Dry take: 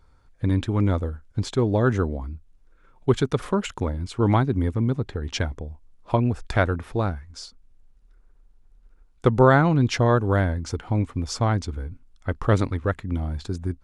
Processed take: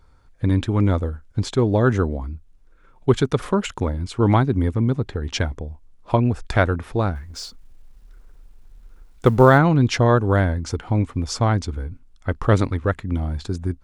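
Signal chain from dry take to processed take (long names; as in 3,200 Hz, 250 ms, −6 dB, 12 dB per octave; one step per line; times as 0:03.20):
0:07.15–0:09.58: mu-law and A-law mismatch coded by mu
level +3 dB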